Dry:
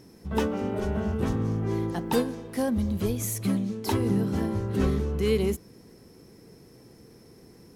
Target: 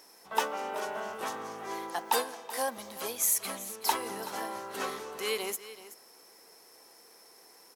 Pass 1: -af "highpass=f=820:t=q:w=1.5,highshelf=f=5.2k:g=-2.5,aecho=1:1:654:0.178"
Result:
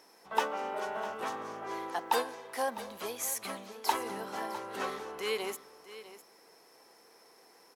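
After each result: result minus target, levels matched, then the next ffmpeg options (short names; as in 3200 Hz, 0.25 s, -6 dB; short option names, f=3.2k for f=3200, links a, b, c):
echo 0.276 s late; 8000 Hz band -5.0 dB
-af "highpass=f=820:t=q:w=1.5,highshelf=f=5.2k:g=-2.5,aecho=1:1:378:0.178"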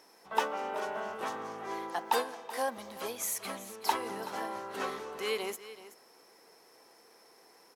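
8000 Hz band -5.0 dB
-af "highpass=f=820:t=q:w=1.5,highshelf=f=5.2k:g=7.5,aecho=1:1:378:0.178"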